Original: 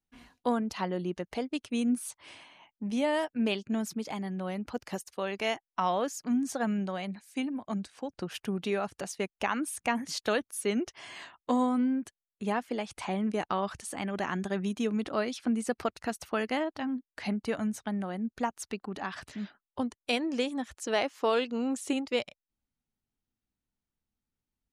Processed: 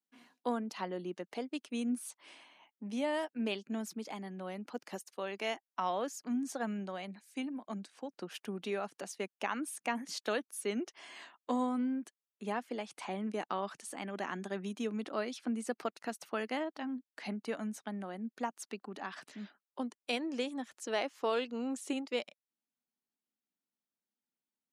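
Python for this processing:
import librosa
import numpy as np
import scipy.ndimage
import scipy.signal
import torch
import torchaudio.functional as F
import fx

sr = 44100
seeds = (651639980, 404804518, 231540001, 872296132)

y = scipy.signal.sosfilt(scipy.signal.butter(4, 200.0, 'highpass', fs=sr, output='sos'), x)
y = y * librosa.db_to_amplitude(-5.5)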